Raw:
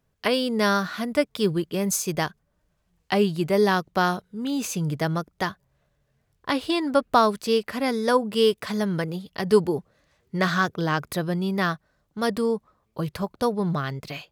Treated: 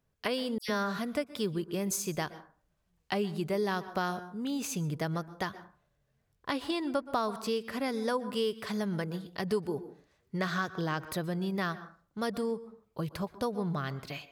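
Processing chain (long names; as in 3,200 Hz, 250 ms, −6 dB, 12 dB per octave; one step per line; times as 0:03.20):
on a send at −17 dB: convolution reverb RT60 0.40 s, pre-delay 113 ms
on the sum: downward compressor 2.5 to 1, threshold −24 dBFS, peak gain reduction 8.5 dB
0:00.58–0:00.99: all-pass dispersion lows, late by 105 ms, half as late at 2,600 Hz
level −5.5 dB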